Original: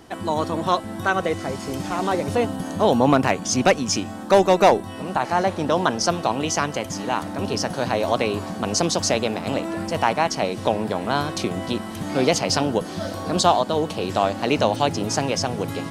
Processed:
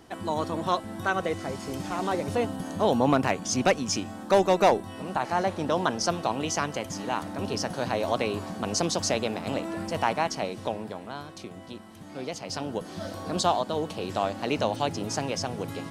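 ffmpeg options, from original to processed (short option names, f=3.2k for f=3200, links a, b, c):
-af "volume=3.5dB,afade=t=out:st=10.15:d=1:silence=0.298538,afade=t=in:st=12.37:d=0.68:silence=0.354813"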